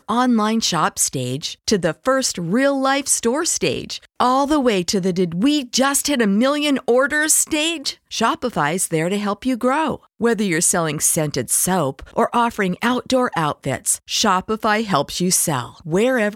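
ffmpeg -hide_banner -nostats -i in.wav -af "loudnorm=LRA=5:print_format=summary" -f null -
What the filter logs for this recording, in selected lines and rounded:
Input Integrated:    -18.6 LUFS
Input True Peak:      -2.1 dBTP
Input LRA:             1.3 LU
Input Threshold:     -28.6 LUFS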